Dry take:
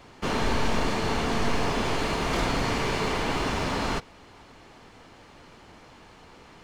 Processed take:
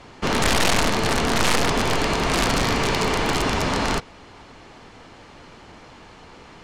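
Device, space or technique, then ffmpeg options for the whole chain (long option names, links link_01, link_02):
overflowing digital effects unit: -af "aeval=exprs='(mod(7.5*val(0)+1,2)-1)/7.5':channel_layout=same,lowpass=9400,volume=5.5dB"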